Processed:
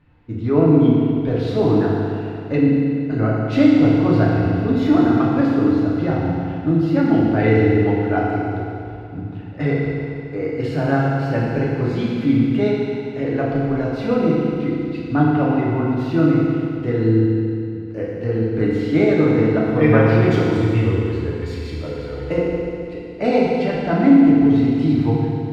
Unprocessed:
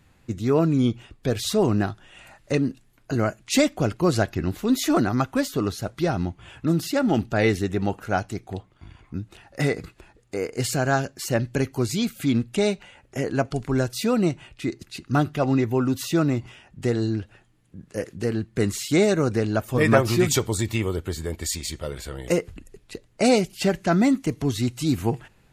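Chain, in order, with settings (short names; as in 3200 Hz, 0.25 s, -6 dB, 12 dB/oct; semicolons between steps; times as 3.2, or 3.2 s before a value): air absorption 370 m; FDN reverb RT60 2.6 s, high-frequency decay 0.95×, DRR -6 dB; gain -1.5 dB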